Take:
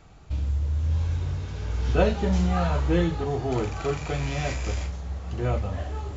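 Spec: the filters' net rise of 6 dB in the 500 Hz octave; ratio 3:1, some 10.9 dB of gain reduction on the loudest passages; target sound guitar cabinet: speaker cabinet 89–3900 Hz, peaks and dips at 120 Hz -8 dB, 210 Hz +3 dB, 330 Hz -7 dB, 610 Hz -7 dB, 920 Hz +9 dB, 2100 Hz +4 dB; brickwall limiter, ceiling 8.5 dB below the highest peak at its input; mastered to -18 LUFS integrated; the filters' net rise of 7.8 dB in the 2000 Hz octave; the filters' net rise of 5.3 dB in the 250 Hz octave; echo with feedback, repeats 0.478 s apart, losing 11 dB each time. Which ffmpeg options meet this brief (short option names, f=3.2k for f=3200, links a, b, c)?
-af "equalizer=f=250:t=o:g=8,equalizer=f=500:t=o:g=8,equalizer=f=2k:t=o:g=7,acompressor=threshold=-23dB:ratio=3,alimiter=limit=-20dB:level=0:latency=1,highpass=89,equalizer=f=120:t=q:w=4:g=-8,equalizer=f=210:t=q:w=4:g=3,equalizer=f=330:t=q:w=4:g=-7,equalizer=f=610:t=q:w=4:g=-7,equalizer=f=920:t=q:w=4:g=9,equalizer=f=2.1k:t=q:w=4:g=4,lowpass=f=3.9k:w=0.5412,lowpass=f=3.9k:w=1.3066,aecho=1:1:478|956|1434:0.282|0.0789|0.0221,volume=13.5dB"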